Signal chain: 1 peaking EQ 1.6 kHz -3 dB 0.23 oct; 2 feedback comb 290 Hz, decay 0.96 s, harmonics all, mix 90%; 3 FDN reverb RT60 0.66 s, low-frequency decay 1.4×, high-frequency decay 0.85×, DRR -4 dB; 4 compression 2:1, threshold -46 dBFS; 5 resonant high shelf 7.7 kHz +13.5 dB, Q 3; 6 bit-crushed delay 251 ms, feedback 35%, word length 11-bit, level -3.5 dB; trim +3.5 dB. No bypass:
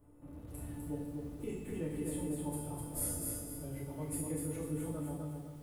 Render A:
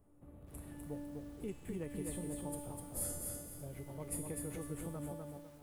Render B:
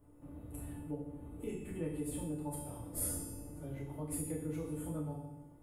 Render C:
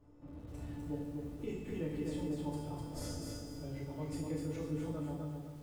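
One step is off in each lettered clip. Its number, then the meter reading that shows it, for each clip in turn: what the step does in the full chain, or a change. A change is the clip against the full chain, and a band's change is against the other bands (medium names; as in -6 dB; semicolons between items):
3, momentary loudness spread change +3 LU; 6, crest factor change +1.5 dB; 5, momentary loudness spread change -1 LU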